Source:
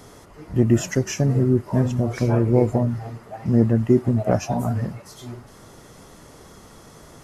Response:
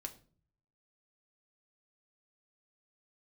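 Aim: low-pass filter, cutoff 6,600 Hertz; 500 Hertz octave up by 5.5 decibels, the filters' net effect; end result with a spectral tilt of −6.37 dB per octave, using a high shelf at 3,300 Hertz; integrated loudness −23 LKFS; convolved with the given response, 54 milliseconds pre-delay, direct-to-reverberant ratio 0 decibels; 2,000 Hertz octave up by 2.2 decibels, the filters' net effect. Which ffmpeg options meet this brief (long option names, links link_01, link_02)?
-filter_complex "[0:a]lowpass=6600,equalizer=frequency=500:width_type=o:gain=7.5,equalizer=frequency=2000:width_type=o:gain=4.5,highshelf=frequency=3300:gain=-7.5,asplit=2[link_01][link_02];[1:a]atrim=start_sample=2205,adelay=54[link_03];[link_02][link_03]afir=irnorm=-1:irlink=0,volume=3dB[link_04];[link_01][link_04]amix=inputs=2:normalize=0,volume=-8.5dB"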